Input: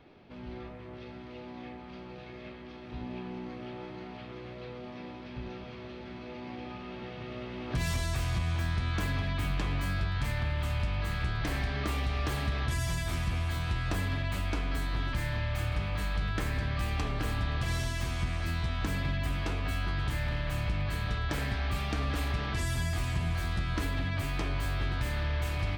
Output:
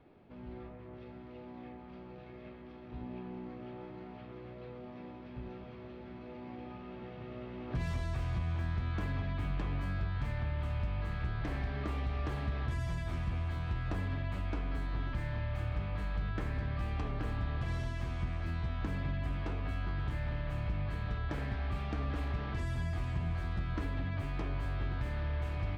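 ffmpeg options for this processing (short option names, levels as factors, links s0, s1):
-af "lowpass=f=1300:p=1,volume=0.668"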